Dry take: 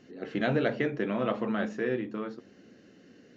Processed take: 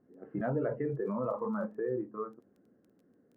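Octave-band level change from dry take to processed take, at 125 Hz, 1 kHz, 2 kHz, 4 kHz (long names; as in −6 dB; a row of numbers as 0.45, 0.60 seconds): −3.0 dB, −3.5 dB, −13.5 dB, below −30 dB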